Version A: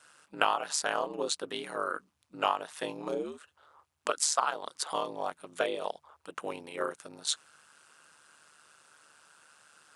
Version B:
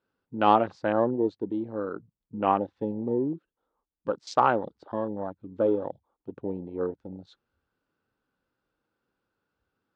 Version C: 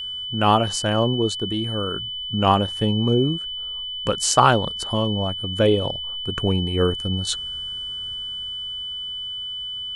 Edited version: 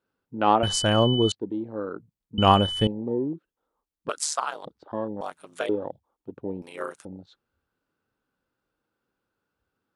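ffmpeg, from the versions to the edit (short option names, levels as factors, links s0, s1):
-filter_complex "[2:a]asplit=2[s0][s1];[0:a]asplit=3[s2][s3][s4];[1:a]asplit=6[s5][s6][s7][s8][s9][s10];[s5]atrim=end=0.632[s11];[s0]atrim=start=0.628:end=1.322[s12];[s6]atrim=start=1.318:end=2.382[s13];[s1]atrim=start=2.378:end=2.872[s14];[s7]atrim=start=2.868:end=4.092[s15];[s2]atrim=start=4.088:end=4.652[s16];[s8]atrim=start=4.648:end=5.212[s17];[s3]atrim=start=5.208:end=5.692[s18];[s9]atrim=start=5.688:end=6.622[s19];[s4]atrim=start=6.618:end=7.052[s20];[s10]atrim=start=7.048[s21];[s11][s12]acrossfade=d=0.004:c1=hsin:c2=hsin[s22];[s22][s13]acrossfade=d=0.004:c1=hsin:c2=hsin[s23];[s23][s14]acrossfade=d=0.004:c1=hsin:c2=hsin[s24];[s24][s15]acrossfade=d=0.004:c1=hsin:c2=hsin[s25];[s25][s16]acrossfade=d=0.004:c1=hsin:c2=hsin[s26];[s26][s17]acrossfade=d=0.004:c1=hsin:c2=hsin[s27];[s27][s18]acrossfade=d=0.004:c1=hsin:c2=hsin[s28];[s28][s19]acrossfade=d=0.004:c1=hsin:c2=hsin[s29];[s29][s20]acrossfade=d=0.004:c1=hsin:c2=hsin[s30];[s30][s21]acrossfade=d=0.004:c1=hsin:c2=hsin"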